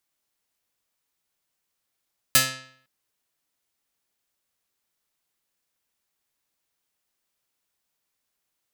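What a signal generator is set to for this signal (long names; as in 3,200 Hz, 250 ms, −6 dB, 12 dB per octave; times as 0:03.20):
Karplus-Strong string C3, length 0.51 s, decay 0.62 s, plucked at 0.34, medium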